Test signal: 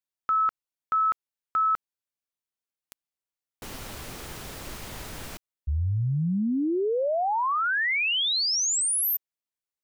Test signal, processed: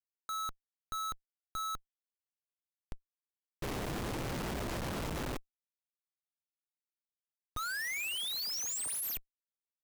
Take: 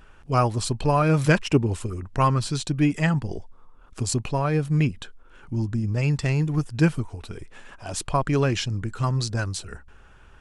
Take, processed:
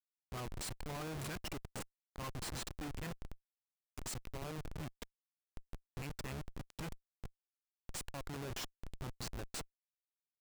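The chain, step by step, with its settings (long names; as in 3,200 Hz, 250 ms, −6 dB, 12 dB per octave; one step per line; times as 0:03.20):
first-order pre-emphasis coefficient 0.9
comparator with hysteresis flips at −36.5 dBFS
level −2 dB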